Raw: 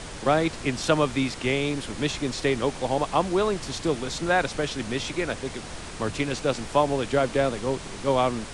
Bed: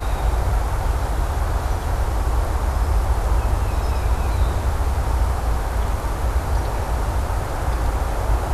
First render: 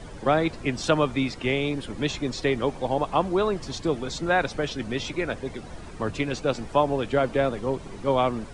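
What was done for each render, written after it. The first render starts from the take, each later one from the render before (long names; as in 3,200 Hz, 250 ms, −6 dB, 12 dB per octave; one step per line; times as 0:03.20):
broadband denoise 12 dB, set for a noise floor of −38 dBFS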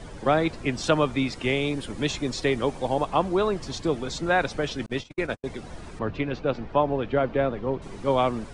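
0:01.32–0:03.05: high-shelf EQ 8,300 Hz +7.5 dB
0:04.86–0:05.44: noise gate −31 dBFS, range −59 dB
0:05.99–0:07.82: high-frequency loss of the air 250 metres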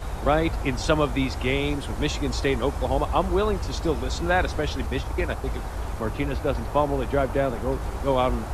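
mix in bed −9.5 dB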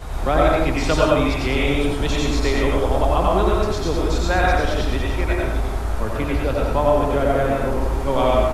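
single-tap delay 90 ms −4 dB
comb and all-pass reverb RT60 0.62 s, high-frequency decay 0.55×, pre-delay 65 ms, DRR −1.5 dB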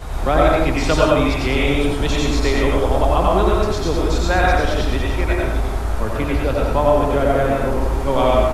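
level +2 dB
brickwall limiter −2 dBFS, peak gain reduction 1 dB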